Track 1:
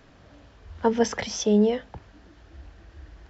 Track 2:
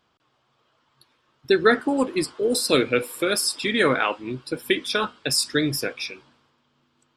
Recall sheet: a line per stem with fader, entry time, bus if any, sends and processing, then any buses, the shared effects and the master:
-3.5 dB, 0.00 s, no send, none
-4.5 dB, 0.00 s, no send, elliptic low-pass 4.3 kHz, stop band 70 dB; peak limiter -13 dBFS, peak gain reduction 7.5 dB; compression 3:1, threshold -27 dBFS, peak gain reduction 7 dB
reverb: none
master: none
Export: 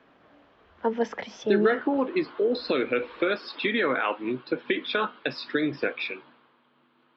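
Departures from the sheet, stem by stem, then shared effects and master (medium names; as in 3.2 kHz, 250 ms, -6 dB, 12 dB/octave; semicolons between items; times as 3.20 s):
stem 2 -4.5 dB -> +5.0 dB; master: extra three-band isolator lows -21 dB, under 180 Hz, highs -19 dB, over 3.4 kHz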